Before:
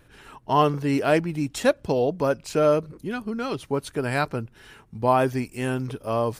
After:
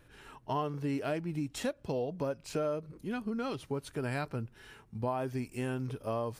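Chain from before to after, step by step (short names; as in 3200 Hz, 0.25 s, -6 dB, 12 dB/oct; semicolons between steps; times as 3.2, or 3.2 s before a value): harmonic-percussive split harmonic +6 dB; compressor 5:1, threshold -22 dBFS, peak gain reduction 11.5 dB; gain -9 dB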